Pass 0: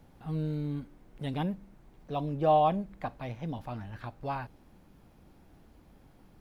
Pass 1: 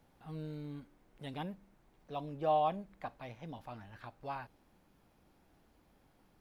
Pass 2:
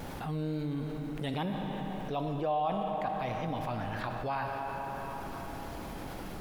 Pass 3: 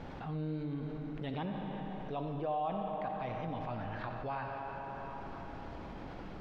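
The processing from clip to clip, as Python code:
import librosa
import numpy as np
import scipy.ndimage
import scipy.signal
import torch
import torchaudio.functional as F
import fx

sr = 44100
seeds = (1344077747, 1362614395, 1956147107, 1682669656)

y1 = fx.low_shelf(x, sr, hz=330.0, db=-8.0)
y1 = F.gain(torch.from_numpy(y1), -5.0).numpy()
y2 = fx.vibrato(y1, sr, rate_hz=2.3, depth_cents=33.0)
y2 = fx.rev_freeverb(y2, sr, rt60_s=3.2, hf_ratio=0.7, predelay_ms=10, drr_db=7.0)
y2 = fx.env_flatten(y2, sr, amount_pct=70)
y2 = F.gain(torch.from_numpy(y2), -2.0).numpy()
y3 = fx.air_absorb(y2, sr, metres=190.0)
y3 = y3 + 10.0 ** (-12.5 / 20.0) * np.pad(y3, (int(90 * sr / 1000.0), 0))[:len(y3)]
y3 = F.gain(torch.from_numpy(y3), -4.0).numpy()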